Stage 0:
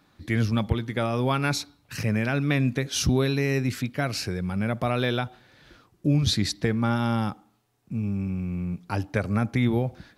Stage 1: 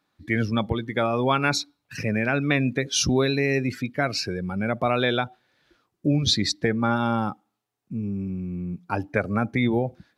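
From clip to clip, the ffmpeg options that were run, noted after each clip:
ffmpeg -i in.wav -af "afftdn=noise_reduction=15:noise_floor=-35,lowshelf=frequency=170:gain=-12,volume=5dB" out.wav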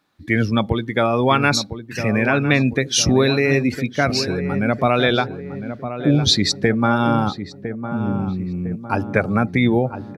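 ffmpeg -i in.wav -filter_complex "[0:a]asplit=2[link_01][link_02];[link_02]adelay=1006,lowpass=frequency=1200:poles=1,volume=-9.5dB,asplit=2[link_03][link_04];[link_04]adelay=1006,lowpass=frequency=1200:poles=1,volume=0.53,asplit=2[link_05][link_06];[link_06]adelay=1006,lowpass=frequency=1200:poles=1,volume=0.53,asplit=2[link_07][link_08];[link_08]adelay=1006,lowpass=frequency=1200:poles=1,volume=0.53,asplit=2[link_09][link_10];[link_10]adelay=1006,lowpass=frequency=1200:poles=1,volume=0.53,asplit=2[link_11][link_12];[link_12]adelay=1006,lowpass=frequency=1200:poles=1,volume=0.53[link_13];[link_01][link_03][link_05][link_07][link_09][link_11][link_13]amix=inputs=7:normalize=0,volume=5.5dB" out.wav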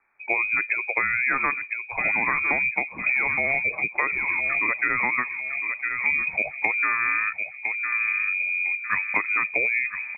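ffmpeg -i in.wav -filter_complex "[0:a]lowpass=frequency=2200:width_type=q:width=0.5098,lowpass=frequency=2200:width_type=q:width=0.6013,lowpass=frequency=2200:width_type=q:width=0.9,lowpass=frequency=2200:width_type=q:width=2.563,afreqshift=-2600,lowshelf=frequency=94:gain=7.5,acrossover=split=170|790[link_01][link_02][link_03];[link_01]acompressor=threshold=-48dB:ratio=4[link_04];[link_02]acompressor=threshold=-31dB:ratio=4[link_05];[link_03]acompressor=threshold=-22dB:ratio=4[link_06];[link_04][link_05][link_06]amix=inputs=3:normalize=0" out.wav

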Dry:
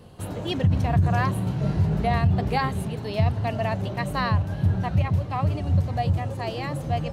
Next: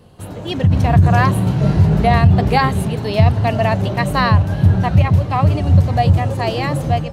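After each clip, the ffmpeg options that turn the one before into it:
ffmpeg -i in.wav -af "dynaudnorm=framelen=430:gausssize=3:maxgain=11.5dB,volume=1dB" out.wav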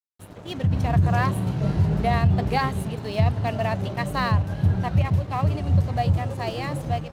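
ffmpeg -i in.wav -af "aeval=exprs='sgn(val(0))*max(abs(val(0))-0.02,0)':channel_layout=same,volume=-8dB" out.wav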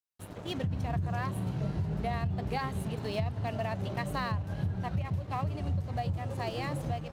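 ffmpeg -i in.wav -af "acompressor=threshold=-29dB:ratio=4,volume=-1.5dB" out.wav

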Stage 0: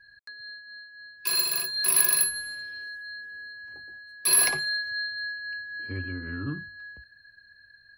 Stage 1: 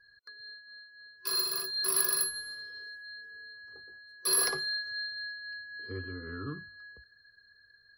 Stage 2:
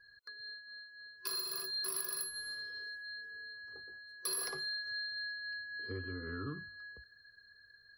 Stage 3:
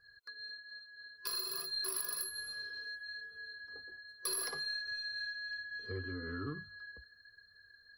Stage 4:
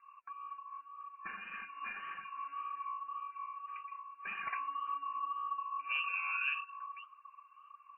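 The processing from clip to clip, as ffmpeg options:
ffmpeg -i in.wav -af "superequalizer=7b=3.16:10b=2.51:12b=0.398:14b=1.78:15b=0.631,volume=-7dB" out.wav
ffmpeg -i in.wav -af "acompressor=threshold=-37dB:ratio=4" out.wav
ffmpeg -i in.wav -af "aeval=exprs='0.0708*(cos(1*acos(clip(val(0)/0.0708,-1,1)))-cos(1*PI/2))+0.00251*(cos(3*acos(clip(val(0)/0.0708,-1,1)))-cos(3*PI/2))+0.00158*(cos(4*acos(clip(val(0)/0.0708,-1,1)))-cos(4*PI/2))':channel_layout=same,flanger=delay=1.5:depth=2.6:regen=-40:speed=1.2:shape=sinusoidal,volume=5dB" out.wav
ffmpeg -i in.wav -af "lowpass=frequency=2400:width_type=q:width=0.5098,lowpass=frequency=2400:width_type=q:width=0.6013,lowpass=frequency=2400:width_type=q:width=0.9,lowpass=frequency=2400:width_type=q:width=2.563,afreqshift=-2800,flanger=delay=0.5:depth=9.7:regen=28:speed=1.8:shape=sinusoidal,volume=8.5dB" out.wav

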